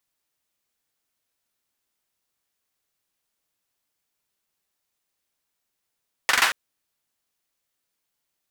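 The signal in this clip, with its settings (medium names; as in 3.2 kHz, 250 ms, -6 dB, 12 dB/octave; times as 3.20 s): hand clap length 0.23 s, apart 43 ms, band 1.6 kHz, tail 0.39 s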